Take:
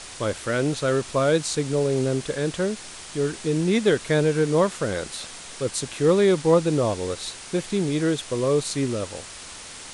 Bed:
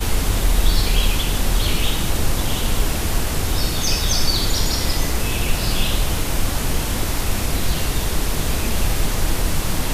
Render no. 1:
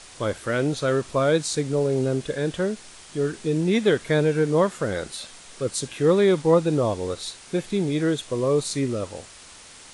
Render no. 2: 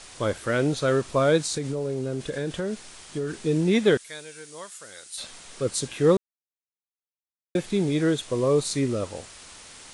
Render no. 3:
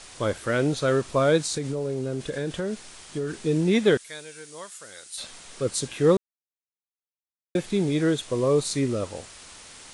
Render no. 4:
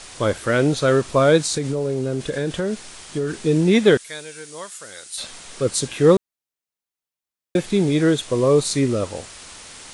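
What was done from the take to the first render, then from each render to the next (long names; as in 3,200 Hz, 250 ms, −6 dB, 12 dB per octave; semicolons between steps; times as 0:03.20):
noise reduction from a noise print 6 dB
0:01.40–0:03.43: downward compressor 10 to 1, threshold −24 dBFS; 0:03.97–0:05.18: first-order pre-emphasis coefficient 0.97; 0:06.17–0:07.55: silence
no processing that can be heard
level +5.5 dB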